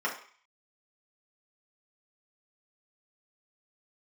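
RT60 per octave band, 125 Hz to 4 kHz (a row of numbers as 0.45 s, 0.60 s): 0.25 s, 0.35 s, 0.40 s, 0.50 s, 0.55 s, 0.55 s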